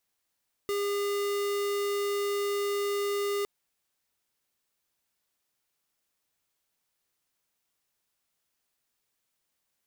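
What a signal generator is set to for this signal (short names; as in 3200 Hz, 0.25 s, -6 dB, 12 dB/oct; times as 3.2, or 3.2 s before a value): tone square 405 Hz -29.5 dBFS 2.76 s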